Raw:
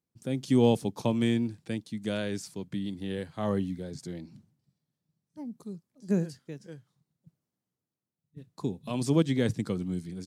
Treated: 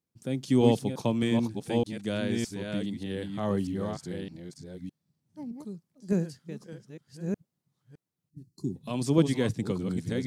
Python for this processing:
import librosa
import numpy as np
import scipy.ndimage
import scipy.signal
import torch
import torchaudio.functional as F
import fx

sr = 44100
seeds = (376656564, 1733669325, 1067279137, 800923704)

y = fx.reverse_delay(x, sr, ms=612, wet_db=-4.5)
y = fx.spec_box(y, sr, start_s=8.3, length_s=0.46, low_hz=390.0, high_hz=4100.0, gain_db=-20)